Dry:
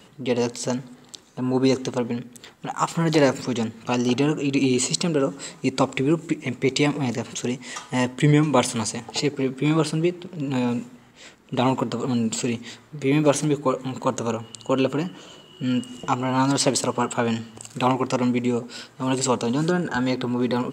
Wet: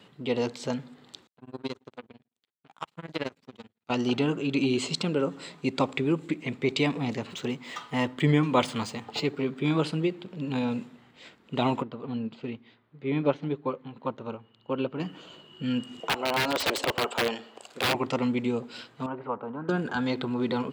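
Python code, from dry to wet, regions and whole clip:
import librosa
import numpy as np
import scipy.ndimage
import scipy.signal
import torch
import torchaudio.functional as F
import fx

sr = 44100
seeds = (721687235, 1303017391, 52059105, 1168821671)

y = fx.chain(x, sr, fx.power_curve(exponent=2.0),
    fx.tremolo(hz=18.0, depth=0.97), at=(1.27, 3.9))
y = fx.chain(y, sr, fx.median_filter(points=3),
    fx.peak_eq(hz=1200.0, db=4.0, octaves=0.43), at=(7.27, 9.59))
y = fx.chain(y, sr, fx.air_absorb(metres=250.0),
    fx.upward_expand(threshold_db=-36.0, expansion=1.5), at=(11.82, 15.0))
y = fx.chain(y, sr, fx.highpass(hz=400.0, slope=12),
    fx.peak_eq(hz=570.0, db=8.0, octaves=1.2),
    fx.overflow_wrap(gain_db=13.5), at=(16.0, 17.95))
y = fx.chain(y, sr, fx.lowpass(hz=1500.0, slope=24),
    fx.low_shelf(hz=490.0, db=-12.0), at=(19.06, 19.69))
y = scipy.signal.sosfilt(scipy.signal.butter(2, 77.0, 'highpass', fs=sr, output='sos'), y)
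y = fx.high_shelf_res(y, sr, hz=5000.0, db=-7.5, q=1.5)
y = F.gain(torch.from_numpy(y), -5.0).numpy()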